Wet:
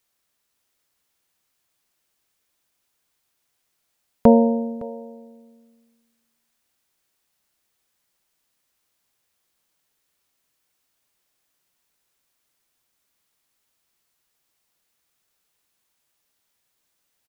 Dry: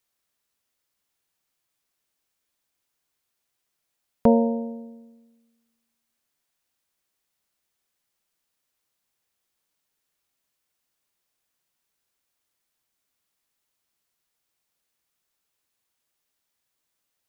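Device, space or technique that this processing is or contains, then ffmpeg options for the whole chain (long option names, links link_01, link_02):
ducked delay: -filter_complex "[0:a]asplit=3[link_01][link_02][link_03];[link_02]adelay=561,volume=-6dB[link_04];[link_03]apad=whole_len=786862[link_05];[link_04][link_05]sidechaincompress=threshold=-42dB:ratio=3:attack=16:release=783[link_06];[link_01][link_06]amix=inputs=2:normalize=0,volume=4.5dB"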